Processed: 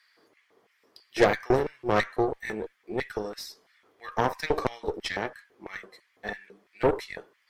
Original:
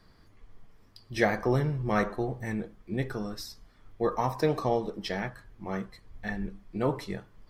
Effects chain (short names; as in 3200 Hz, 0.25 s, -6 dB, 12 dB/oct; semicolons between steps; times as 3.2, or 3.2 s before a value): LFO high-pass square 3 Hz 410–2000 Hz; added harmonics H 8 -18 dB, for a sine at -6 dBFS